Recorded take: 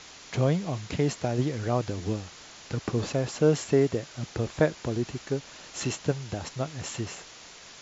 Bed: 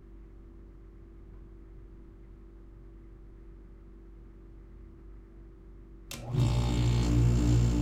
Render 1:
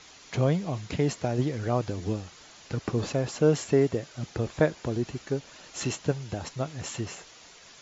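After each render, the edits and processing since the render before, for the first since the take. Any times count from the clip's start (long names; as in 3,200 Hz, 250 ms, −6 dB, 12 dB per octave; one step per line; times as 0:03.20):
broadband denoise 6 dB, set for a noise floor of −48 dBFS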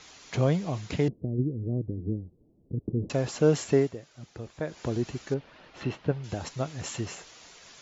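0:01.08–0:03.10: inverse Chebyshev low-pass filter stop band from 1,700 Hz, stop band 70 dB
0:03.77–0:04.81: duck −10.5 dB, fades 0.16 s
0:05.34–0:06.24: high-frequency loss of the air 310 metres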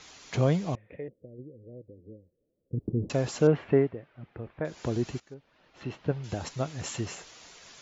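0:00.75–0:02.73: formant resonators in series e
0:03.47–0:04.65: low-pass filter 2,500 Hz 24 dB per octave
0:05.20–0:06.19: fade in quadratic, from −17.5 dB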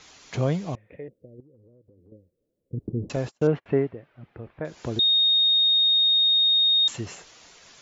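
0:01.40–0:02.12: downward compressor, threshold −52 dBFS
0:03.16–0:03.66: noise gate −35 dBFS, range −37 dB
0:04.99–0:06.88: beep over 3,710 Hz −16.5 dBFS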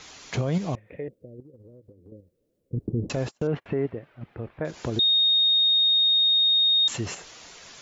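in parallel at +2 dB: output level in coarse steps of 14 dB
on the sum: brickwall limiter −17 dBFS, peak gain reduction 9.5 dB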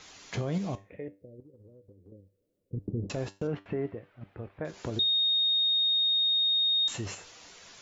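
tuned comb filter 98 Hz, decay 0.29 s, harmonics all, mix 60%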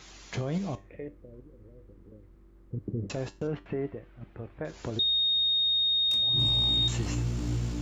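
mix in bed −5.5 dB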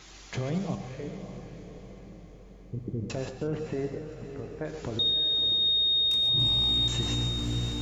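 feedback delay with all-pass diffusion 588 ms, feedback 52%, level −9.5 dB
reverb whose tail is shaped and stops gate 160 ms rising, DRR 7 dB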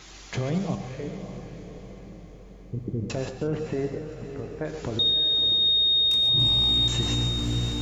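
level +3.5 dB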